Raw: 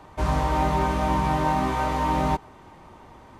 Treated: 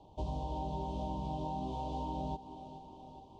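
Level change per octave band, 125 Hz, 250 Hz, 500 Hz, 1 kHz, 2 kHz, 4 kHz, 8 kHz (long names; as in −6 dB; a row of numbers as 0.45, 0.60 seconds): −13.5 dB, −13.5 dB, −14.0 dB, −16.0 dB, below −35 dB, −15.5 dB, below −20 dB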